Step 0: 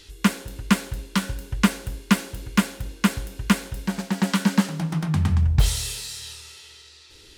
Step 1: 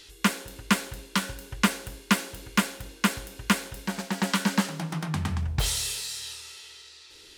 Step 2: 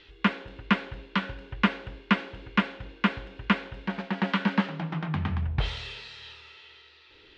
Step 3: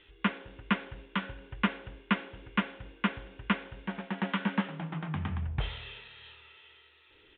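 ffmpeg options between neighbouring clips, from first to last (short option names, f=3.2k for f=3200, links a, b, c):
-af "lowshelf=f=210:g=-11.5"
-af "lowpass=f=3.2k:w=0.5412,lowpass=f=3.2k:w=1.3066"
-af "aresample=8000,aresample=44100,volume=-5dB"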